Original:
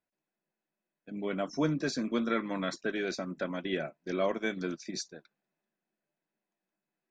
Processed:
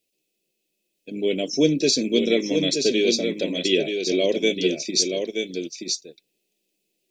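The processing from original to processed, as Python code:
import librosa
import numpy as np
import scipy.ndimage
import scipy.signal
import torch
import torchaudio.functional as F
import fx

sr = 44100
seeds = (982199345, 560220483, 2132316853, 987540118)

y = fx.curve_eq(x, sr, hz=(200.0, 450.0, 1300.0, 2600.0), db=(0, 10, -26, 13))
y = y + 10.0 ** (-5.5 / 20.0) * np.pad(y, (int(927 * sr / 1000.0), 0))[:len(y)]
y = F.gain(torch.from_numpy(y), 5.0).numpy()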